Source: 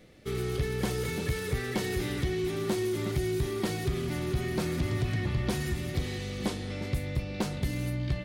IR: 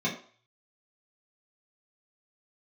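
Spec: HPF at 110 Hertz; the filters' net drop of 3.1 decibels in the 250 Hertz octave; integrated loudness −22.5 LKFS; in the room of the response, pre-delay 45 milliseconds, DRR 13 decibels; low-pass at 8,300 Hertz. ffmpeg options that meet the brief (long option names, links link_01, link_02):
-filter_complex "[0:a]highpass=110,lowpass=8300,equalizer=frequency=250:width_type=o:gain=-4.5,asplit=2[link_01][link_02];[1:a]atrim=start_sample=2205,adelay=45[link_03];[link_02][link_03]afir=irnorm=-1:irlink=0,volume=-22dB[link_04];[link_01][link_04]amix=inputs=2:normalize=0,volume=11.5dB"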